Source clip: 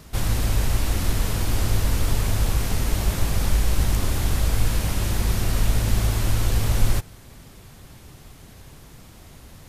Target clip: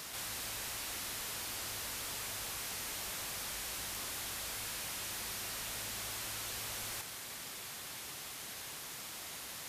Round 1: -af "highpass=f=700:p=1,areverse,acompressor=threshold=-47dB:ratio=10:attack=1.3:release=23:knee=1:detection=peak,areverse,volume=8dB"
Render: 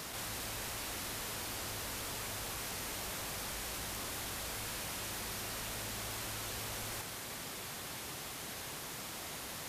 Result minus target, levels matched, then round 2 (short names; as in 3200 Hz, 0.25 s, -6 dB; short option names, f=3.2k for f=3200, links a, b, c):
500 Hz band +5.0 dB
-af "highpass=f=1.7k:p=1,areverse,acompressor=threshold=-47dB:ratio=10:attack=1.3:release=23:knee=1:detection=peak,areverse,volume=8dB"